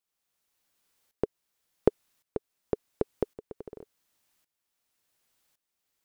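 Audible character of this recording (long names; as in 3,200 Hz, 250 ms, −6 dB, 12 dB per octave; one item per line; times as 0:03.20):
tremolo saw up 0.9 Hz, depth 85%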